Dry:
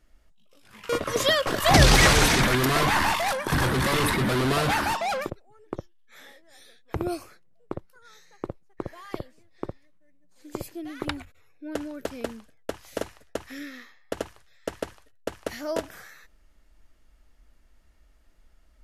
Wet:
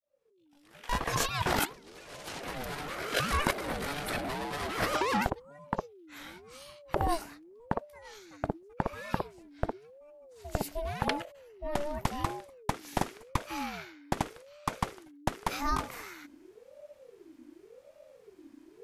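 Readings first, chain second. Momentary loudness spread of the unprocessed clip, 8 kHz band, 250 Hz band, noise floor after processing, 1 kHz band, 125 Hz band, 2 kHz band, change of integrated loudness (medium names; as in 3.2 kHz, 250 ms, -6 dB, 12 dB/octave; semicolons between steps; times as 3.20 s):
21 LU, -10.5 dB, -8.0 dB, -60 dBFS, -5.5 dB, -10.5 dB, -10.0 dB, -10.5 dB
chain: fade-in on the opening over 1.84 s; compressor with a negative ratio -28 dBFS, ratio -0.5; ring modulator with a swept carrier 440 Hz, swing 35%, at 0.89 Hz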